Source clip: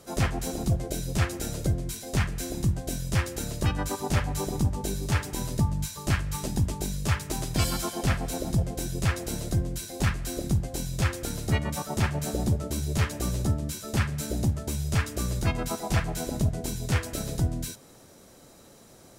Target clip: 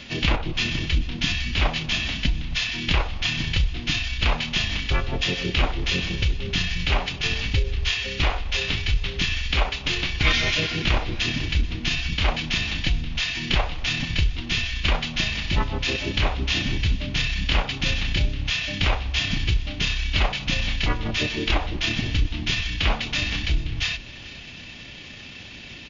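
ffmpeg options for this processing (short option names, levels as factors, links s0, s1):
-filter_complex "[0:a]equalizer=f=5900:w=0.98:g=12.5,asplit=2[s0][s1];[s1]acompressor=threshold=0.0178:ratio=6,volume=1.33[s2];[s0][s2]amix=inputs=2:normalize=0,asetrate=26990,aresample=44100,atempo=1.63392,aecho=1:1:321|642|963:0.1|0.043|0.0185,asetrate=32667,aresample=44100,volume=1.12"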